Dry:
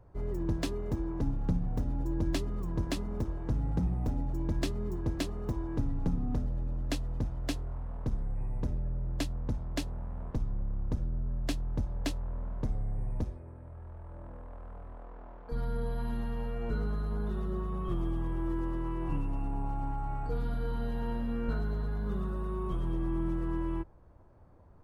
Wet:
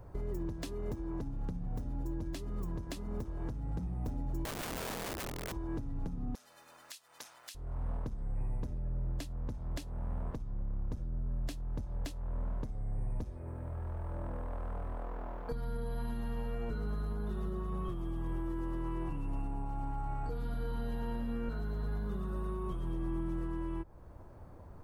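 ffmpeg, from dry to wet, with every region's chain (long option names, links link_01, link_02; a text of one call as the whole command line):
ffmpeg -i in.wav -filter_complex "[0:a]asettb=1/sr,asplit=3[link_01][link_02][link_03];[link_01]atrim=end=4.454[link_04];[link_02]atrim=start=4.45:end=5.52,asetpts=PTS-STARTPTS,afade=type=in:duration=0.004:curve=qsin,afade=type=out:start_time=1.066:duration=0.004:curve=qsin,lowpass=1400,aeval=exprs='(mod(35.5*val(0)+1,2)-1)/35.5':channel_layout=same[link_05];[link_03]atrim=start=5.516[link_06];[link_04][link_05]acrossfade=duration=0.004:curve1=hsin:curve2=qsin[link_07];[link_07][link_06]acrossfade=duration=0.004:curve1=qsin:curve2=hsin,asettb=1/sr,asplit=3[link_08][link_09][link_10];[link_08]atrim=end=6.354[link_11];[link_09]atrim=start=6.35:end=7.55,asetpts=PTS-STARTPTS,afade=type=in:duration=0.004:curve=qsin,afade=type=out:start_time=1.196:duration=0.004:curve=qsin,highpass=1400,highshelf=frequency=2400:gain=9[link_12];[link_10]atrim=start=7.546[link_13];[link_11][link_12]acrossfade=duration=0.004:curve1=hsin:curve2=qsin[link_14];[link_14][link_13]acrossfade=duration=0.004:curve1=qsin:curve2=hsin,highshelf=frequency=6600:gain=7,acompressor=threshold=-37dB:ratio=6,alimiter=level_in=10.5dB:limit=-24dB:level=0:latency=1:release=409,volume=-10.5dB,volume=6.5dB" out.wav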